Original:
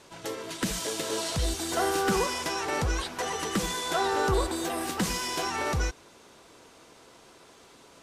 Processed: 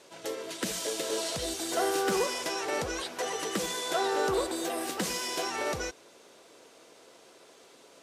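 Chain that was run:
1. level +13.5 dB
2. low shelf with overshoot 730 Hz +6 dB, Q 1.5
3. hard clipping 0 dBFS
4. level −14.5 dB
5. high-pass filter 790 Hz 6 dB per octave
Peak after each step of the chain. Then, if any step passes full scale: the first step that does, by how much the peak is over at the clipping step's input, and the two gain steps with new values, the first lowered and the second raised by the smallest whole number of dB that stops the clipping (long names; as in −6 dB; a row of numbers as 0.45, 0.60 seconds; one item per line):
−4.0, +3.5, 0.0, −14.5, −16.5 dBFS
step 2, 3.5 dB
step 1 +9.5 dB, step 4 −10.5 dB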